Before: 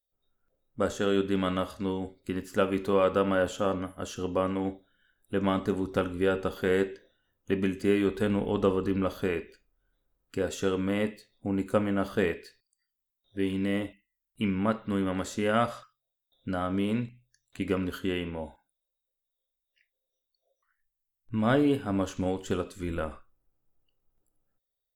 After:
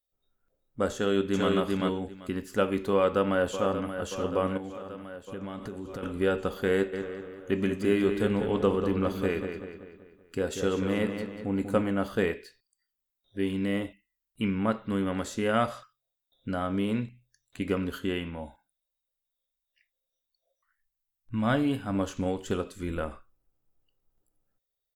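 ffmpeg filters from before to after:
ffmpeg -i in.wav -filter_complex "[0:a]asplit=2[link_01][link_02];[link_02]afade=type=in:start_time=0.94:duration=0.01,afade=type=out:start_time=1.5:duration=0.01,aecho=0:1:390|780|1170:0.841395|0.126209|0.0189314[link_03];[link_01][link_03]amix=inputs=2:normalize=0,asplit=2[link_04][link_05];[link_05]afade=type=in:start_time=2.95:duration=0.01,afade=type=out:start_time=3.99:duration=0.01,aecho=0:1:580|1160|1740|2320|2900|3480|4060|4640|5220|5800:0.316228|0.221359|0.154952|0.108466|0.0759263|0.0531484|0.0372039|0.0260427|0.0182299|0.0127609[link_06];[link_04][link_06]amix=inputs=2:normalize=0,asettb=1/sr,asplit=3[link_07][link_08][link_09];[link_07]atrim=end=4.574[link_10];[link_08]atrim=start=4.57:end=6.03,asetpts=PTS-STARTPTS,afade=type=in:duration=0.004:curve=qsin,afade=type=out:start_time=1.456:duration=0.004:curve=qsin,acompressor=threshold=-34dB:ratio=6:attack=3.2:release=140:knee=1:detection=peak[link_11];[link_09]atrim=start=6.026[link_12];[link_10][link_11]acrossfade=duration=0.004:curve1=hsin:curve2=qsin[link_13];[link_13][link_12]acrossfade=duration=0.004:curve1=qsin:curve2=hsin,asplit=3[link_14][link_15][link_16];[link_14]afade=type=out:start_time=6.92:duration=0.02[link_17];[link_15]asplit=2[link_18][link_19];[link_19]adelay=191,lowpass=frequency=5000:poles=1,volume=-7dB,asplit=2[link_20][link_21];[link_21]adelay=191,lowpass=frequency=5000:poles=1,volume=0.49,asplit=2[link_22][link_23];[link_23]adelay=191,lowpass=frequency=5000:poles=1,volume=0.49,asplit=2[link_24][link_25];[link_25]adelay=191,lowpass=frequency=5000:poles=1,volume=0.49,asplit=2[link_26][link_27];[link_27]adelay=191,lowpass=frequency=5000:poles=1,volume=0.49,asplit=2[link_28][link_29];[link_29]adelay=191,lowpass=frequency=5000:poles=1,volume=0.49[link_30];[link_18][link_20][link_22][link_24][link_26][link_28][link_30]amix=inputs=7:normalize=0,afade=type=in:start_time=6.92:duration=0.02,afade=type=out:start_time=11.9:duration=0.02[link_31];[link_16]afade=type=in:start_time=11.9:duration=0.02[link_32];[link_17][link_31][link_32]amix=inputs=3:normalize=0,asettb=1/sr,asplit=3[link_33][link_34][link_35];[link_33]atrim=end=18.194[link_36];[link_34]atrim=start=18.19:end=21.95,asetpts=PTS-STARTPTS,afade=type=in:duration=0.004:curve=qsin,afade=type=out:start_time=3.756:duration=0.004:curve=qsin,equalizer=frequency=420:width_type=o:width=0.53:gain=-9[link_37];[link_35]atrim=start=21.946[link_38];[link_36][link_37]acrossfade=duration=0.004:curve1=hsin:curve2=qsin[link_39];[link_39][link_38]acrossfade=duration=0.004:curve1=qsin:curve2=hsin" out.wav

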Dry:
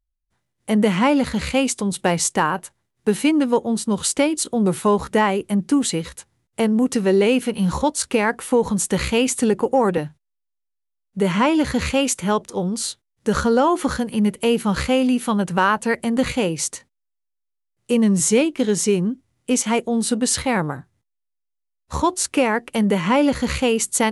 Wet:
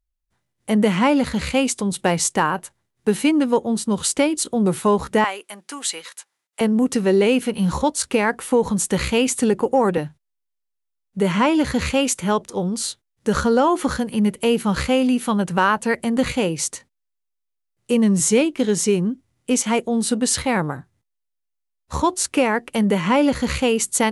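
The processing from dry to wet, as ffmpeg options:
ffmpeg -i in.wav -filter_complex "[0:a]asettb=1/sr,asplit=3[link_01][link_02][link_03];[link_01]atrim=end=5.244[link_04];[link_02]atrim=start=5.24:end=6.61,asetpts=PTS-STARTPTS,afade=type=in:duration=0.004:curve=qsin,afade=type=out:start_time=1.366:duration=0.004:curve=qsin,highpass=900[link_05];[link_03]atrim=start=6.606[link_06];[link_04][link_05]acrossfade=duration=0.004:curve1=hsin:curve2=qsin[link_07];[link_07][link_06]acrossfade=duration=0.004:curve1=qsin:curve2=hsin" out.wav

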